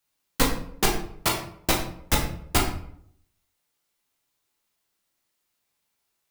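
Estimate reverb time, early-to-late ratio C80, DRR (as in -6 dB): 0.65 s, 9.5 dB, -1.0 dB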